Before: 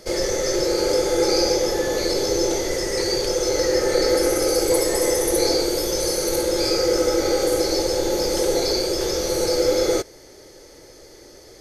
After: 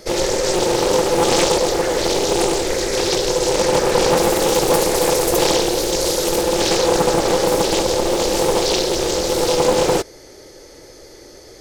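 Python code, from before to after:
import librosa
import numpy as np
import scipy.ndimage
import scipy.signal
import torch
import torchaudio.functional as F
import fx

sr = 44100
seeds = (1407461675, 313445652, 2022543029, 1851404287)

y = fx.doppler_dist(x, sr, depth_ms=0.72)
y = y * 10.0 ** (4.0 / 20.0)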